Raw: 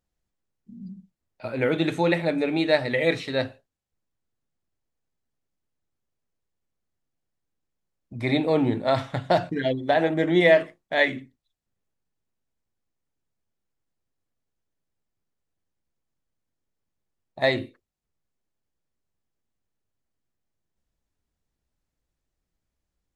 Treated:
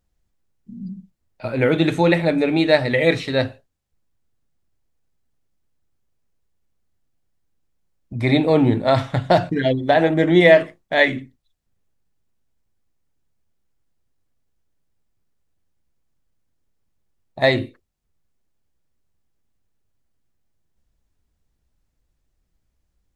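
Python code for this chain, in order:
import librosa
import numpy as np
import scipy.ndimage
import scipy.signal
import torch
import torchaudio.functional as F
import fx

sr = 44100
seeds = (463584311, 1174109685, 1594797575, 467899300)

y = fx.low_shelf(x, sr, hz=120.0, db=8.0)
y = y * librosa.db_to_amplitude(5.0)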